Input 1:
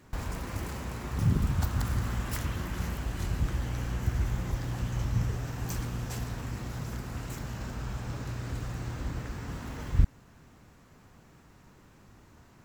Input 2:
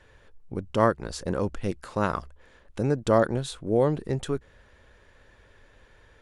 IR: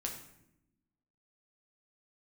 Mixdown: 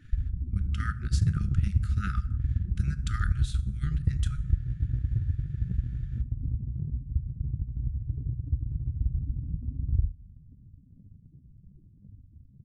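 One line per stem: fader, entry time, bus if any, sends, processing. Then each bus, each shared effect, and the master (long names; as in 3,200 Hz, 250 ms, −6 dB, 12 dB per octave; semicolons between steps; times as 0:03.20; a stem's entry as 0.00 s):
0.0 dB, 0.00 s, send −5.5 dB, echo send −6.5 dB, spectral peaks only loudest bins 4; low-shelf EQ 130 Hz +5 dB; downward compressor, threshold −28 dBFS, peak gain reduction 15 dB
−9.0 dB, 0.00 s, send −5 dB, no echo send, brick-wall band-stop 210–1,200 Hz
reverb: on, RT60 0.80 s, pre-delay 7 ms
echo: single-tap delay 71 ms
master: transient designer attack +7 dB, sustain −3 dB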